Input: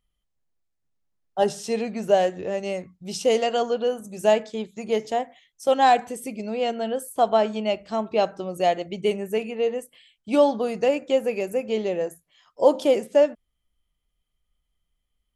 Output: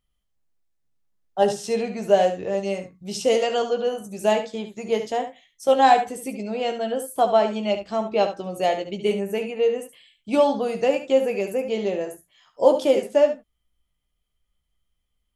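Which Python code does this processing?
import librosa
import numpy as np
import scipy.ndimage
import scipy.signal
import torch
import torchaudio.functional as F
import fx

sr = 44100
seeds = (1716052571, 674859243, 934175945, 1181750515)

p1 = fx.doubler(x, sr, ms=15.0, db=-8.0)
y = p1 + fx.echo_single(p1, sr, ms=71, db=-10.0, dry=0)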